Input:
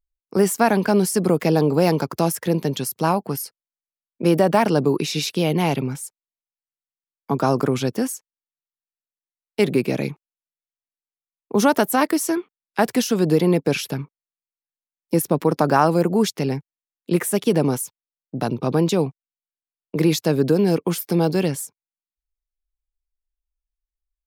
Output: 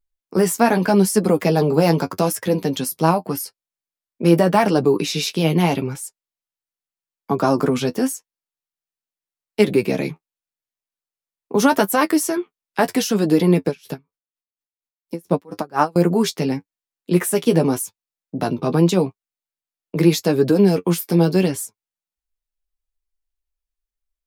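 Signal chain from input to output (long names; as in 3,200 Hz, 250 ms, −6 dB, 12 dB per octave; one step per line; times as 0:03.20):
flanger 0.83 Hz, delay 9.2 ms, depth 3.4 ms, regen +31%
0:13.67–0:15.96: tremolo with a sine in dB 4.2 Hz, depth 30 dB
level +5.5 dB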